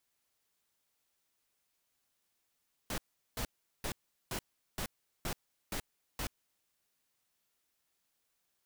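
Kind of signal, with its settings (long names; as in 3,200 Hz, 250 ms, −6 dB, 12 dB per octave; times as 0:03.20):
noise bursts pink, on 0.08 s, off 0.39 s, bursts 8, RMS −37 dBFS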